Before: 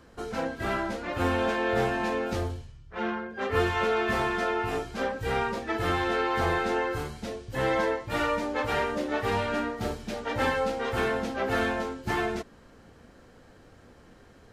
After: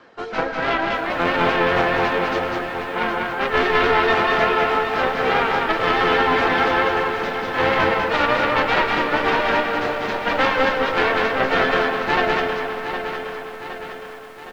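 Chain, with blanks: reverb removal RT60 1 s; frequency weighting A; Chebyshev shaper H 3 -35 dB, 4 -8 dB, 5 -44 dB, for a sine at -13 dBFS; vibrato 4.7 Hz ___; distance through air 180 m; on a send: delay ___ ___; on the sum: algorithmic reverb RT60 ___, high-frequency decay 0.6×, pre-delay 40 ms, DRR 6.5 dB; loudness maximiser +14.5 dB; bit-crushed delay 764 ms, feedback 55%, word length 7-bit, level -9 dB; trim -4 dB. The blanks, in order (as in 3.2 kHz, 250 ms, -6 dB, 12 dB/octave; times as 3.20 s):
42 cents, 196 ms, -3.5 dB, 3.7 s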